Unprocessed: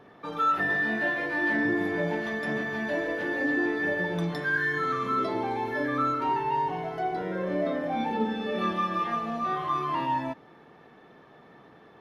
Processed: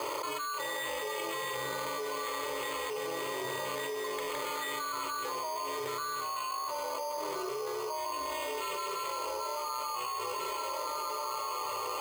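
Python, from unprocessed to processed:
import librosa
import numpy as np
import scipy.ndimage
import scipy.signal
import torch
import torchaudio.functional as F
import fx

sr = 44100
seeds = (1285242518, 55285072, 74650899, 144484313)

p1 = scipy.signal.sosfilt(scipy.signal.butter(4, 660.0, 'highpass', fs=sr, output='sos'), x)
p2 = fx.peak_eq(p1, sr, hz=1600.0, db=-11.5, octaves=1.4)
p3 = fx.notch(p2, sr, hz=1600.0, q=6.0)
p4 = p3 + 0.33 * np.pad(p3, (int(3.8 * sr / 1000.0), 0))[:len(p3)]
p5 = p4 * np.sin(2.0 * np.pi * 160.0 * np.arange(len(p4)) / sr)
p6 = fx.air_absorb(p5, sr, metres=68.0)
p7 = fx.fixed_phaser(p6, sr, hz=1100.0, stages=8)
p8 = p7 + fx.echo_diffused(p7, sr, ms=1549, feedback_pct=41, wet_db=-9.5, dry=0)
p9 = np.repeat(p8[::8], 8)[:len(p8)]
y = fx.env_flatten(p9, sr, amount_pct=100)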